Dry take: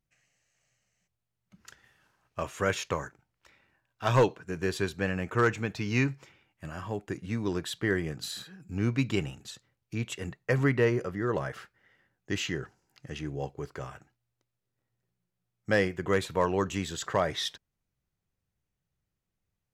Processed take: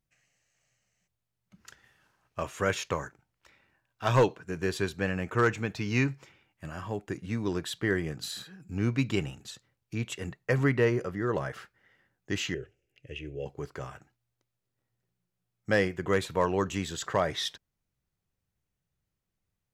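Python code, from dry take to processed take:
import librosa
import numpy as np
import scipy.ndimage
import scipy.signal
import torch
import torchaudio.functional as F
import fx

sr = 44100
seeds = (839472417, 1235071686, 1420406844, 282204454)

y = fx.curve_eq(x, sr, hz=(100.0, 210.0, 410.0, 580.0, 950.0, 2700.0, 4400.0, 6500.0), db=(0, -14, 1, -1, -28, 5, -16, -12), at=(12.54, 13.46))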